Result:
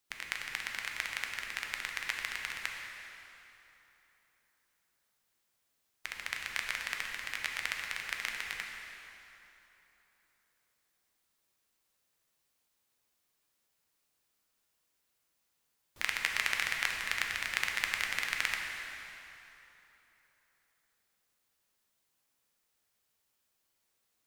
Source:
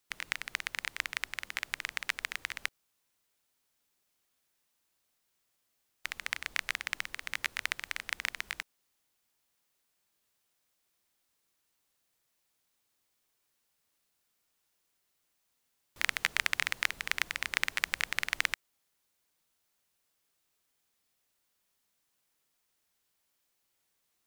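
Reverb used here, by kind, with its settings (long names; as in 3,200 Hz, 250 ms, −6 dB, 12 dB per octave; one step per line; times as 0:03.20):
dense smooth reverb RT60 3.4 s, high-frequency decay 0.75×, DRR 0.5 dB
level −3 dB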